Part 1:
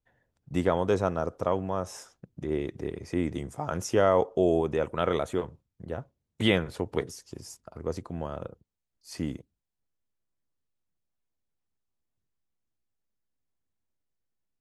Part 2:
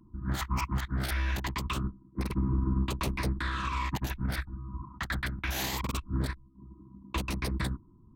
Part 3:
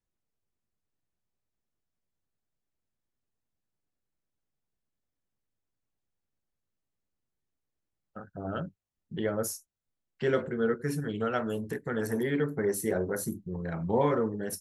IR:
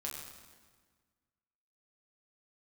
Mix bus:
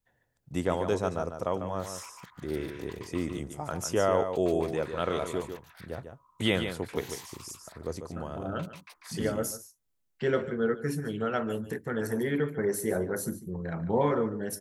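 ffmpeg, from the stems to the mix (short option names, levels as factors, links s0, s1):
-filter_complex "[0:a]highshelf=f=6300:g=10,volume=0.668,asplit=2[s0][s1];[s1]volume=0.398[s2];[1:a]highpass=f=740:w=0.5412,highpass=f=740:w=1.3066,adelay=1450,volume=0.188,asplit=2[s3][s4];[s4]volume=0.631[s5];[2:a]volume=1,asplit=2[s6][s7];[s7]volume=0.188[s8];[s2][s5][s8]amix=inputs=3:normalize=0,aecho=0:1:146:1[s9];[s0][s3][s6][s9]amix=inputs=4:normalize=0"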